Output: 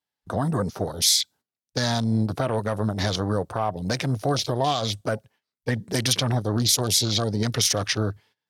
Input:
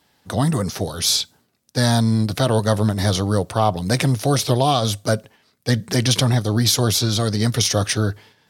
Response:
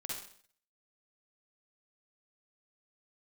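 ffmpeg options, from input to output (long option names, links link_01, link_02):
-filter_complex "[0:a]agate=range=-12dB:threshold=-46dB:ratio=16:detection=peak,afwtdn=0.0355,lowshelf=frequency=440:gain=-6.5,acrossover=split=6500[link_01][link_02];[link_01]alimiter=limit=-15dB:level=0:latency=1:release=171[link_03];[link_03][link_02]amix=inputs=2:normalize=0,volume=2dB"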